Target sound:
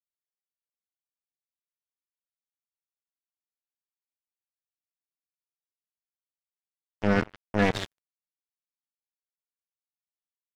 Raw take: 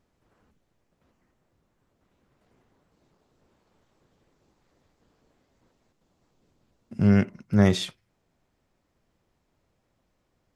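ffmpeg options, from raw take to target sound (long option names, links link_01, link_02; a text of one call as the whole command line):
ffmpeg -i in.wav -filter_complex "[0:a]highpass=frequency=67:poles=1,lowshelf=frequency=350:gain=-6,aecho=1:1:4.1:0.95,asplit=5[link_01][link_02][link_03][link_04][link_05];[link_02]adelay=147,afreqshift=-94,volume=-7dB[link_06];[link_03]adelay=294,afreqshift=-188,volume=-16.4dB[link_07];[link_04]adelay=441,afreqshift=-282,volume=-25.7dB[link_08];[link_05]adelay=588,afreqshift=-376,volume=-35.1dB[link_09];[link_01][link_06][link_07][link_08][link_09]amix=inputs=5:normalize=0,acrusher=bits=2:mix=0:aa=0.5,alimiter=limit=-13dB:level=0:latency=1:release=349,bass=frequency=250:gain=-1,treble=frequency=4000:gain=-8,acrossover=split=7400[link_10][link_11];[link_11]acompressor=threshold=-51dB:ratio=4:attack=1:release=60[link_12];[link_10][link_12]amix=inputs=2:normalize=0,volume=1.5dB" out.wav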